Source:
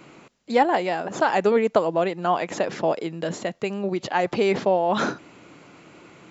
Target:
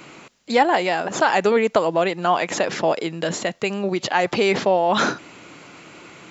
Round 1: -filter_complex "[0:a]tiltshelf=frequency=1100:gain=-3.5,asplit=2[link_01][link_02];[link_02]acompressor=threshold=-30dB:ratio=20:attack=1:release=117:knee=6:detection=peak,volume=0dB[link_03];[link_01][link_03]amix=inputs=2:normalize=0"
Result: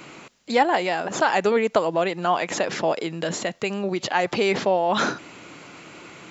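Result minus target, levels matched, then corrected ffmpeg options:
downward compressor: peak gain reduction +11 dB
-filter_complex "[0:a]tiltshelf=frequency=1100:gain=-3.5,asplit=2[link_01][link_02];[link_02]acompressor=threshold=-18.5dB:ratio=20:attack=1:release=117:knee=6:detection=peak,volume=0dB[link_03];[link_01][link_03]amix=inputs=2:normalize=0"

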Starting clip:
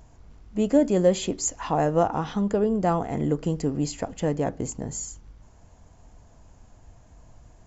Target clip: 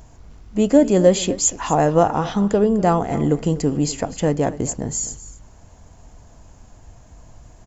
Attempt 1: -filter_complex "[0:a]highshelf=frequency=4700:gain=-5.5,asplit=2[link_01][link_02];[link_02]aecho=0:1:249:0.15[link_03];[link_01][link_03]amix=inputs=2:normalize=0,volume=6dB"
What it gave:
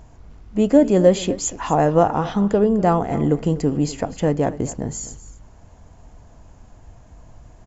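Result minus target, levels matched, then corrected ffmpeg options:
8,000 Hz band −6.5 dB
-filter_complex "[0:a]highshelf=frequency=4700:gain=4,asplit=2[link_01][link_02];[link_02]aecho=0:1:249:0.15[link_03];[link_01][link_03]amix=inputs=2:normalize=0,volume=6dB"

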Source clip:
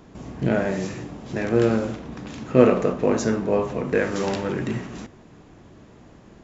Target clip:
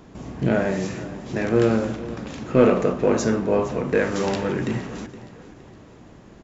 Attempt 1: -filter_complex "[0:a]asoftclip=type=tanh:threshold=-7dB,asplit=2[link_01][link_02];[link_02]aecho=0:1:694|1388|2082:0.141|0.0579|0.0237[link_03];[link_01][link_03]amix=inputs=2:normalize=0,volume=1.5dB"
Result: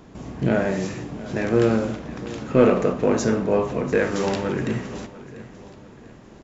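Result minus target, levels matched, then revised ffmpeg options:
echo 227 ms late
-filter_complex "[0:a]asoftclip=type=tanh:threshold=-7dB,asplit=2[link_01][link_02];[link_02]aecho=0:1:467|934|1401:0.141|0.0579|0.0237[link_03];[link_01][link_03]amix=inputs=2:normalize=0,volume=1.5dB"

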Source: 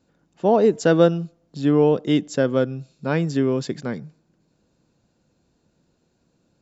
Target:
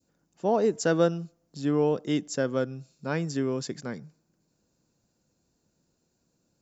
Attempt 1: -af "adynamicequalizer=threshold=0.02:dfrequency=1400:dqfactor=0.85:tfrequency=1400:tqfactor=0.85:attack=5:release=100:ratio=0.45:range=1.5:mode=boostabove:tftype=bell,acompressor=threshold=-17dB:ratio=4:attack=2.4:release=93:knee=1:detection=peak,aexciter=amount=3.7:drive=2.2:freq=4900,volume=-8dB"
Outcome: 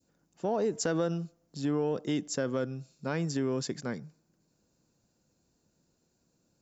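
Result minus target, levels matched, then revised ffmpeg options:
downward compressor: peak gain reduction +9 dB
-af "adynamicequalizer=threshold=0.02:dfrequency=1400:dqfactor=0.85:tfrequency=1400:tqfactor=0.85:attack=5:release=100:ratio=0.45:range=1.5:mode=boostabove:tftype=bell,aexciter=amount=3.7:drive=2.2:freq=4900,volume=-8dB"

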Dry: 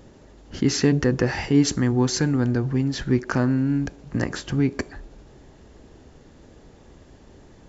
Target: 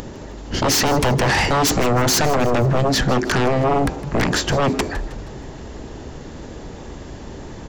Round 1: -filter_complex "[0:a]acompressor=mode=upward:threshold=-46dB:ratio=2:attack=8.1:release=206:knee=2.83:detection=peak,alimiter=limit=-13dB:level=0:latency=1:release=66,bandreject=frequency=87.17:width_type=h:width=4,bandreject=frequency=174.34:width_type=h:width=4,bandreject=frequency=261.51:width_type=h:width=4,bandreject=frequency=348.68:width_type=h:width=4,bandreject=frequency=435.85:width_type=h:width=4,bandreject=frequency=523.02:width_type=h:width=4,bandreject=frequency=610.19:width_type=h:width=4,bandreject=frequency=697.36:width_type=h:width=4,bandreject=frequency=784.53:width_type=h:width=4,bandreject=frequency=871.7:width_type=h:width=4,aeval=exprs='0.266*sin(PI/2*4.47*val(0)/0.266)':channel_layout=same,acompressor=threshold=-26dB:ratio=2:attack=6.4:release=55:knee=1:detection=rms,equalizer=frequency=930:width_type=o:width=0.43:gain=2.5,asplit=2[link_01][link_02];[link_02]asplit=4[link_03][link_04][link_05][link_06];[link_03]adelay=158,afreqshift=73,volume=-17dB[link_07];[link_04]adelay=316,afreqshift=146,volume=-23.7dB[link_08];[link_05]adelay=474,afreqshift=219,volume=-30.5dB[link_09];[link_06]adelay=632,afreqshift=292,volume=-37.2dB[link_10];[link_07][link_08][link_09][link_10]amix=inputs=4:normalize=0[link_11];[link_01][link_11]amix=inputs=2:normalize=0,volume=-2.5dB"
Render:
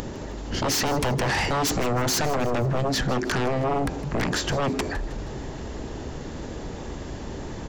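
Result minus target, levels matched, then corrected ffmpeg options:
downward compressor: peak gain reduction +7 dB
-filter_complex "[0:a]acompressor=mode=upward:threshold=-46dB:ratio=2:attack=8.1:release=206:knee=2.83:detection=peak,alimiter=limit=-13dB:level=0:latency=1:release=66,bandreject=frequency=87.17:width_type=h:width=4,bandreject=frequency=174.34:width_type=h:width=4,bandreject=frequency=261.51:width_type=h:width=4,bandreject=frequency=348.68:width_type=h:width=4,bandreject=frequency=435.85:width_type=h:width=4,bandreject=frequency=523.02:width_type=h:width=4,bandreject=frequency=610.19:width_type=h:width=4,bandreject=frequency=697.36:width_type=h:width=4,bandreject=frequency=784.53:width_type=h:width=4,bandreject=frequency=871.7:width_type=h:width=4,aeval=exprs='0.266*sin(PI/2*4.47*val(0)/0.266)':channel_layout=same,equalizer=frequency=930:width_type=o:width=0.43:gain=2.5,asplit=2[link_01][link_02];[link_02]asplit=4[link_03][link_04][link_05][link_06];[link_03]adelay=158,afreqshift=73,volume=-17dB[link_07];[link_04]adelay=316,afreqshift=146,volume=-23.7dB[link_08];[link_05]adelay=474,afreqshift=219,volume=-30.5dB[link_09];[link_06]adelay=632,afreqshift=292,volume=-37.2dB[link_10];[link_07][link_08][link_09][link_10]amix=inputs=4:normalize=0[link_11];[link_01][link_11]amix=inputs=2:normalize=0,volume=-2.5dB"

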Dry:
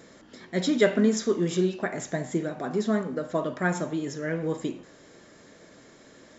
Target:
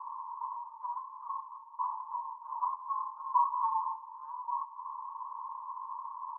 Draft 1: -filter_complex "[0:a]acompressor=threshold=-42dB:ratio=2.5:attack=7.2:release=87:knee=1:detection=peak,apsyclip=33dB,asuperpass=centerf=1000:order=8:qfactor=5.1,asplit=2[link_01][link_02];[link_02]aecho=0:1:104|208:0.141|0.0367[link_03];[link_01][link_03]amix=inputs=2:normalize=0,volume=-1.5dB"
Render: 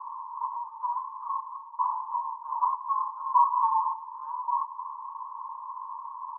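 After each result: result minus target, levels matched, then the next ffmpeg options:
echo 59 ms early; downward compressor: peak gain reduction −7 dB
-filter_complex "[0:a]acompressor=threshold=-42dB:ratio=2.5:attack=7.2:release=87:knee=1:detection=peak,apsyclip=33dB,asuperpass=centerf=1000:order=8:qfactor=5.1,asplit=2[link_01][link_02];[link_02]aecho=0:1:163|326:0.141|0.0367[link_03];[link_01][link_03]amix=inputs=2:normalize=0,volume=-1.5dB"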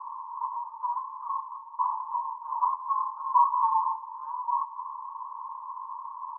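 downward compressor: peak gain reduction −7 dB
-filter_complex "[0:a]acompressor=threshold=-54dB:ratio=2.5:attack=7.2:release=87:knee=1:detection=peak,apsyclip=33dB,asuperpass=centerf=1000:order=8:qfactor=5.1,asplit=2[link_01][link_02];[link_02]aecho=0:1:163|326:0.141|0.0367[link_03];[link_01][link_03]amix=inputs=2:normalize=0,volume=-1.5dB"

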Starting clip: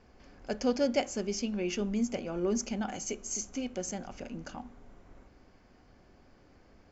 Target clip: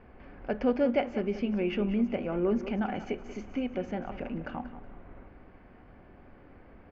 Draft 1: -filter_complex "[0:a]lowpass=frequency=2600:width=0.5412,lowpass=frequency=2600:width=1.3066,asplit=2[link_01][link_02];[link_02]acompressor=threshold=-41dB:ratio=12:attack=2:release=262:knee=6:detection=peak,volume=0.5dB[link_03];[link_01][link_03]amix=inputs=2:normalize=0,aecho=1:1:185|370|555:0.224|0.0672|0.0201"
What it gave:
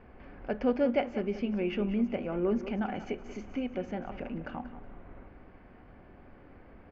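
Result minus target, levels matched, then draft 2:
downward compressor: peak gain reduction +6.5 dB
-filter_complex "[0:a]lowpass=frequency=2600:width=0.5412,lowpass=frequency=2600:width=1.3066,asplit=2[link_01][link_02];[link_02]acompressor=threshold=-34dB:ratio=12:attack=2:release=262:knee=6:detection=peak,volume=0.5dB[link_03];[link_01][link_03]amix=inputs=2:normalize=0,aecho=1:1:185|370|555:0.224|0.0672|0.0201"

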